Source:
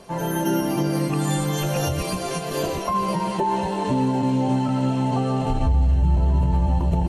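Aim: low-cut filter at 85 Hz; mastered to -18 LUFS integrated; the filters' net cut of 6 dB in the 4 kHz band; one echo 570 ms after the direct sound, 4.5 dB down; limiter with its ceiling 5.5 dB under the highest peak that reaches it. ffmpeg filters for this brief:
-af "highpass=85,equalizer=f=4000:t=o:g=-8.5,alimiter=limit=0.158:level=0:latency=1,aecho=1:1:570:0.596,volume=2"

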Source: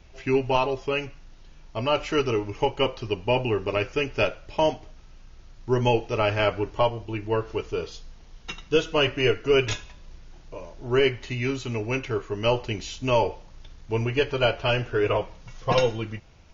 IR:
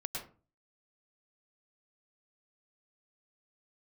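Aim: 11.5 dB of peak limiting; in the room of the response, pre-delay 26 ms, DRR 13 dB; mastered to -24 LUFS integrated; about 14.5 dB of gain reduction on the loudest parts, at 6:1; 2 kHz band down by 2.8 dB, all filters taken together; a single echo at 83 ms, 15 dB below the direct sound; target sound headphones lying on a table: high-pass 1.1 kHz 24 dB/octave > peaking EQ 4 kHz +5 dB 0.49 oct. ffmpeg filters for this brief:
-filter_complex "[0:a]equalizer=f=2000:t=o:g=-4.5,acompressor=threshold=0.0224:ratio=6,alimiter=level_in=2.24:limit=0.0631:level=0:latency=1,volume=0.447,aecho=1:1:83:0.178,asplit=2[s0][s1];[1:a]atrim=start_sample=2205,adelay=26[s2];[s1][s2]afir=irnorm=-1:irlink=0,volume=0.2[s3];[s0][s3]amix=inputs=2:normalize=0,highpass=f=1100:w=0.5412,highpass=f=1100:w=1.3066,equalizer=f=4000:t=o:w=0.49:g=5,volume=15.8"

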